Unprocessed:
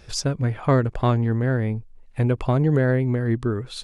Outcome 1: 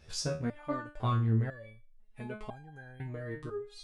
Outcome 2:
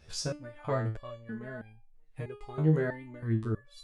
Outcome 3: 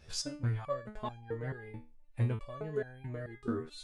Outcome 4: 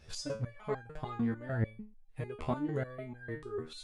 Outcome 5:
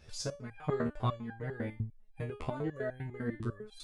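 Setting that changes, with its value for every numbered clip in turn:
step-sequenced resonator, speed: 2, 3.1, 4.6, 6.7, 10 Hertz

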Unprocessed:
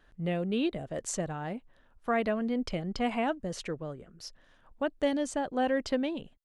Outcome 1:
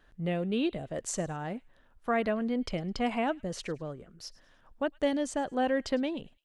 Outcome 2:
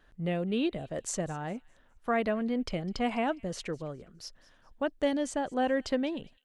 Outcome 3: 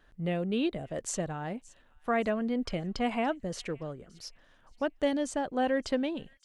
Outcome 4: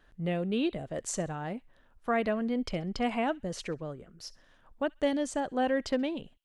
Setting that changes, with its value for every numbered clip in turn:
delay with a high-pass on its return, delay time: 105, 205, 571, 66 milliseconds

